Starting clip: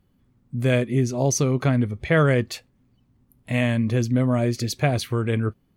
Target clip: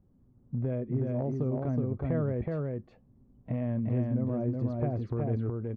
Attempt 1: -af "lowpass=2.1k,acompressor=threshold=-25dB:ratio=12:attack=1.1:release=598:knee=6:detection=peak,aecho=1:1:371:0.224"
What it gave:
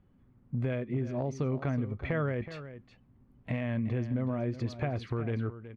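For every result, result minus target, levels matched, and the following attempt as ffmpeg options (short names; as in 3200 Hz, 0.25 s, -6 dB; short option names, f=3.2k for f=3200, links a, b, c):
2000 Hz band +13.0 dB; echo-to-direct -10.5 dB
-af "lowpass=700,acompressor=threshold=-25dB:ratio=12:attack=1.1:release=598:knee=6:detection=peak,aecho=1:1:371:0.224"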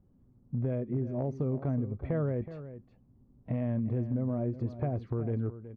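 echo-to-direct -10.5 dB
-af "lowpass=700,acompressor=threshold=-25dB:ratio=12:attack=1.1:release=598:knee=6:detection=peak,aecho=1:1:371:0.75"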